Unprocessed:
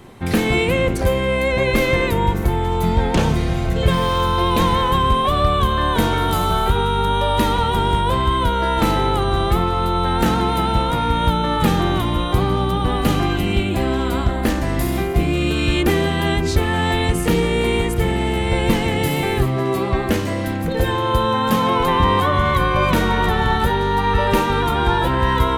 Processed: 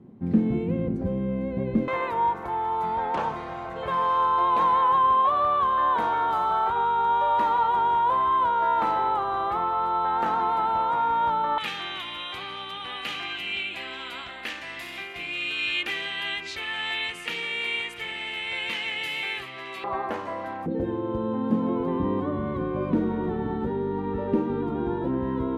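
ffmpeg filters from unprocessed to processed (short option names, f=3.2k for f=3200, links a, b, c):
-af "asetnsamples=n=441:p=0,asendcmd='1.88 bandpass f 980;11.58 bandpass f 2600;19.84 bandpass f 930;20.66 bandpass f 280',bandpass=f=210:t=q:w=2.2:csg=0"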